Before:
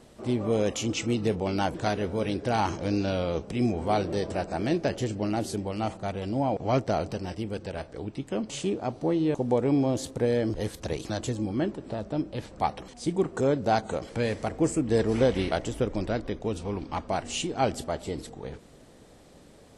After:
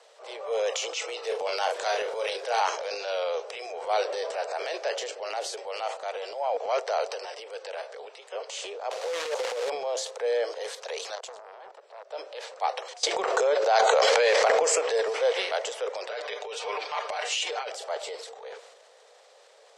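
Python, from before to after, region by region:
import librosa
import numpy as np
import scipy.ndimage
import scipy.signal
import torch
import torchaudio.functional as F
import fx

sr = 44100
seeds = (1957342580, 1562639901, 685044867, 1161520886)

y = fx.high_shelf(x, sr, hz=10000.0, db=11.0, at=(1.22, 2.6), fade=0.02)
y = fx.dmg_crackle(y, sr, seeds[0], per_s=340.0, level_db=-46.0, at=(1.22, 2.6), fade=0.02)
y = fx.doubler(y, sr, ms=33.0, db=-7.5, at=(1.22, 2.6), fade=0.02)
y = fx.chain(y, sr, fx.peak_eq(hz=520.0, db=9.0, octaves=0.22),
    fx.over_compress(threshold_db=-27.0, ratio=-1.0),
    fx.quant_companded(bits=4), at=(8.91, 9.7))
y = fx.chain(y, sr, fx.highpass(hz=53.0, slope=12),
    fx.level_steps(step_db=19),
    fx.transformer_sat(knee_hz=1100.0), at=(11.15, 12.11))
y = fx.chain(y, sr, fx.highpass(hz=260.0, slope=12),
    fx.peak_eq(hz=8900.0, db=-10.0, octaves=0.23),
    fx.env_flatten(amount_pct=100), at=(13.03, 14.96))
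y = fx.chain(y, sr, fx.peak_eq(hz=2500.0, db=6.0, octaves=1.7),
    fx.comb(ms=6.7, depth=0.92),
    fx.over_compress(threshold_db=-28.0, ratio=-0.5), at=(16.09, 17.69))
y = scipy.signal.sosfilt(scipy.signal.butter(12, 450.0, 'highpass', fs=sr, output='sos'), y)
y = fx.transient(y, sr, attack_db=-4, sustain_db=7)
y = scipy.signal.sosfilt(scipy.signal.cheby1(2, 1.0, 6100.0, 'lowpass', fs=sr, output='sos'), y)
y = y * librosa.db_to_amplitude(2.5)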